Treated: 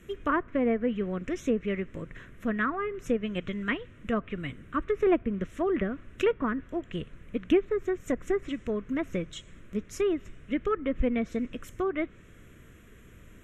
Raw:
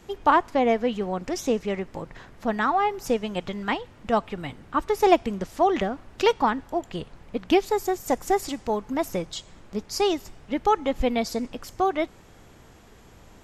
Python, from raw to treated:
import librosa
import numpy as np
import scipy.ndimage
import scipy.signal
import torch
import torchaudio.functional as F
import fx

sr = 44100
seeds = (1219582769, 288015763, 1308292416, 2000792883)

y = fx.env_lowpass_down(x, sr, base_hz=1500.0, full_db=-18.5)
y = fx.fixed_phaser(y, sr, hz=2000.0, stages=4)